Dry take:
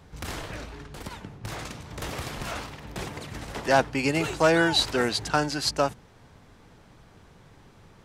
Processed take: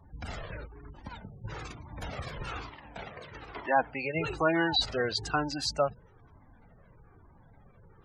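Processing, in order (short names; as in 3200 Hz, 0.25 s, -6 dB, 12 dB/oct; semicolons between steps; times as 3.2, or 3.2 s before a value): 2.69–4.15 tone controls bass -9 dB, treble -6 dB; spectral gate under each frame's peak -20 dB strong; 0.66–1.06 negative-ratio compressor -44 dBFS, ratio -0.5; cascading flanger falling 1.1 Hz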